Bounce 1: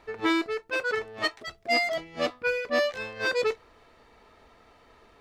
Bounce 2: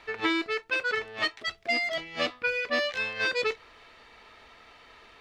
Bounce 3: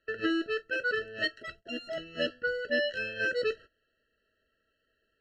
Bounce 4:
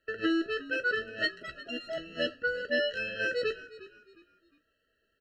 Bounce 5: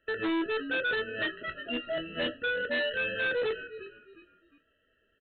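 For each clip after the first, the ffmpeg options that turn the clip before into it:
ffmpeg -i in.wav -filter_complex "[0:a]equalizer=frequency=2900:width=0.46:gain=12.5,acrossover=split=390[link_01][link_02];[link_02]acompressor=threshold=-23dB:ratio=6[link_03];[link_01][link_03]amix=inputs=2:normalize=0,volume=-2.5dB" out.wav
ffmpeg -i in.wav -af "aemphasis=mode=reproduction:type=cd,agate=range=-20dB:threshold=-44dB:ratio=16:detection=peak,afftfilt=real='re*eq(mod(floor(b*sr/1024/650),2),0)':imag='im*eq(mod(floor(b*sr/1024/650),2),0)':win_size=1024:overlap=0.75" out.wav
ffmpeg -i in.wav -filter_complex "[0:a]asplit=2[link_01][link_02];[link_02]adelay=15,volume=-12.5dB[link_03];[link_01][link_03]amix=inputs=2:normalize=0,asplit=4[link_04][link_05][link_06][link_07];[link_05]adelay=357,afreqshift=-49,volume=-17.5dB[link_08];[link_06]adelay=714,afreqshift=-98,volume=-27.4dB[link_09];[link_07]adelay=1071,afreqshift=-147,volume=-37.3dB[link_10];[link_04][link_08][link_09][link_10]amix=inputs=4:normalize=0" out.wav
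ffmpeg -i in.wav -filter_complex "[0:a]asplit=2[link_01][link_02];[link_02]adelay=25,volume=-9dB[link_03];[link_01][link_03]amix=inputs=2:normalize=0,aresample=8000,volume=31dB,asoftclip=hard,volume=-31dB,aresample=44100,volume=4dB" out.wav

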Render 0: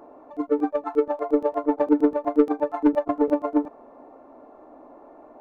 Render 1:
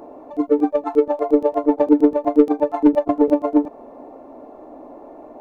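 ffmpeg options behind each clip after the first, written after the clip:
ffmpeg -i in.wav -filter_complex "[0:a]equalizer=frequency=1400:width_type=o:width=1.1:gain=-8,asplit=2[link_01][link_02];[link_02]acompressor=threshold=-27dB:ratio=6,volume=-2dB[link_03];[link_01][link_03]amix=inputs=2:normalize=0,volume=4dB" out.wav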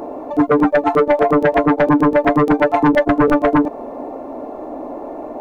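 ffmpeg -i in.wav -af "alimiter=limit=-8dB:level=0:latency=1:release=111,aeval=exprs='0.398*sin(PI/2*2.24*val(0)/0.398)':channel_layout=same" out.wav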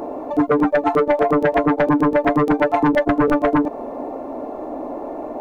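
ffmpeg -i in.wav -af "acompressor=threshold=-13dB:ratio=6" out.wav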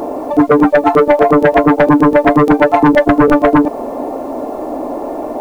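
ffmpeg -i in.wav -af "acrusher=bits=8:mix=0:aa=0.000001,volume=7.5dB" out.wav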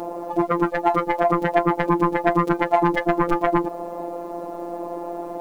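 ffmpeg -i in.wav -af "afftfilt=real='hypot(re,im)*cos(PI*b)':imag='0':win_size=1024:overlap=0.75,volume=-5.5dB" out.wav

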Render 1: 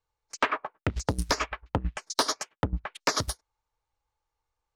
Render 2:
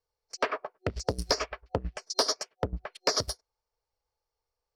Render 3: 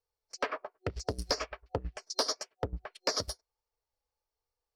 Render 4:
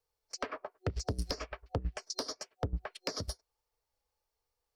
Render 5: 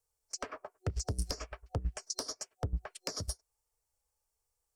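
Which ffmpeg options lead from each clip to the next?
ffmpeg -i in.wav -af "superequalizer=7b=2.51:8b=2.24:14b=2.51,volume=-5dB" out.wav
ffmpeg -i in.wav -af "flanger=delay=2.2:depth=1.7:regen=-58:speed=1.1:shape=triangular" out.wav
ffmpeg -i in.wav -filter_complex "[0:a]acrossover=split=290[link_01][link_02];[link_02]acompressor=threshold=-39dB:ratio=10[link_03];[link_01][link_03]amix=inputs=2:normalize=0,volume=3.5dB" out.wav
ffmpeg -i in.wav -af "equalizer=frequency=250:width_type=o:width=1:gain=-5,equalizer=frequency=500:width_type=o:width=1:gain=-4,equalizer=frequency=1000:width_type=o:width=1:gain=-3,equalizer=frequency=2000:width_type=o:width=1:gain=-4,equalizer=frequency=4000:width_type=o:width=1:gain=-8,equalizer=frequency=8000:width_type=o:width=1:gain=9,volume=1.5dB" out.wav

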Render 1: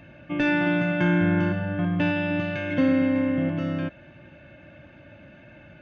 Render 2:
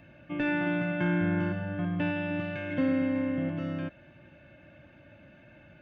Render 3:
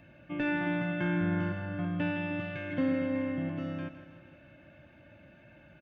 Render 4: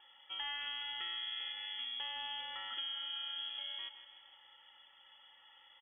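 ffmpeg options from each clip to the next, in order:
ffmpeg -i in.wav -filter_complex "[0:a]acrossover=split=3800[link_01][link_02];[link_02]acompressor=threshold=-58dB:ratio=4:attack=1:release=60[link_03];[link_01][link_03]amix=inputs=2:normalize=0,volume=-6dB" out.wav
ffmpeg -i in.wav -af "aecho=1:1:161|322|483|644|805|966:0.251|0.138|0.076|0.0418|0.023|0.0126,volume=-2dB" out.wav
ffmpeg -i in.wav -af "acompressor=threshold=-32dB:ratio=6,crystalizer=i=3:c=0,lowpass=frequency=3000:width_type=q:width=0.5098,lowpass=frequency=3000:width_type=q:width=0.6013,lowpass=frequency=3000:width_type=q:width=0.9,lowpass=frequency=3000:width_type=q:width=2.563,afreqshift=-3500,volume=-7dB" out.wav

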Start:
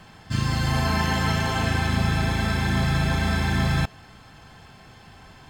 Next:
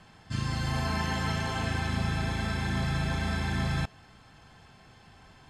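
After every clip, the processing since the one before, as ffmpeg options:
ffmpeg -i in.wav -af "lowpass=frequency=12000:width=0.5412,lowpass=frequency=12000:width=1.3066,volume=-7dB" out.wav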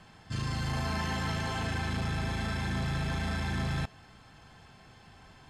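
ffmpeg -i in.wav -af "asoftclip=type=tanh:threshold=-26dB" out.wav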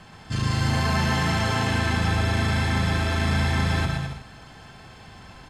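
ffmpeg -i in.wav -af "aecho=1:1:120|210|277.5|328.1|366.1:0.631|0.398|0.251|0.158|0.1,volume=7.5dB" out.wav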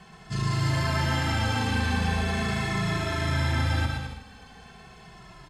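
ffmpeg -i in.wav -filter_complex "[0:a]asplit=2[link_01][link_02];[link_02]adelay=2.3,afreqshift=-0.41[link_03];[link_01][link_03]amix=inputs=2:normalize=1" out.wav

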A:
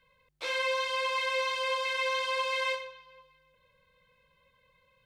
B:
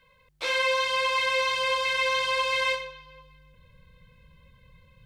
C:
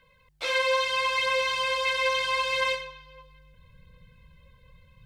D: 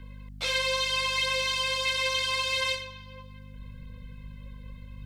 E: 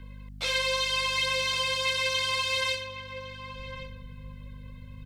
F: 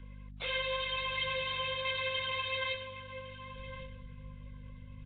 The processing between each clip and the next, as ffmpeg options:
ffmpeg -i in.wav -af "asubboost=boost=7:cutoff=240,volume=6dB" out.wav
ffmpeg -i in.wav -af "aphaser=in_gain=1:out_gain=1:delay=2.2:decay=0.3:speed=0.76:type=triangular,volume=-1dB" out.wav
ffmpeg -i in.wav -filter_complex "[0:a]aeval=exprs='val(0)+0.00447*(sin(2*PI*50*n/s)+sin(2*PI*2*50*n/s)/2+sin(2*PI*3*50*n/s)/3+sin(2*PI*4*50*n/s)/4+sin(2*PI*5*50*n/s)/5)':channel_layout=same,acrossover=split=200|3000[link_01][link_02][link_03];[link_02]acompressor=threshold=-57dB:ratio=1.5[link_04];[link_01][link_04][link_03]amix=inputs=3:normalize=0,volume=5dB" out.wav
ffmpeg -i in.wav -filter_complex "[0:a]asplit=2[link_01][link_02];[link_02]adelay=1108,volume=-8dB,highshelf=frequency=4000:gain=-24.9[link_03];[link_01][link_03]amix=inputs=2:normalize=0" out.wav
ffmpeg -i in.wav -af "volume=-4.5dB" -ar 8000 -c:a nellymoser out.flv

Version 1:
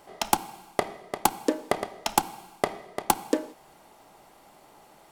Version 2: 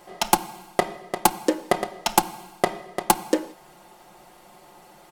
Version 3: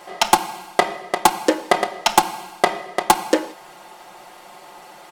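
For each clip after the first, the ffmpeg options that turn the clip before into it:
ffmpeg -i in.wav -af "aecho=1:1:5.6:0.68,volume=3dB" out.wav
ffmpeg -i in.wav -filter_complex "[0:a]asplit=2[link_01][link_02];[link_02]highpass=frequency=720:poles=1,volume=14dB,asoftclip=type=tanh:threshold=-1.5dB[link_03];[link_01][link_03]amix=inputs=2:normalize=0,lowpass=frequency=5400:poles=1,volume=-6dB,volume=1.5dB" out.wav

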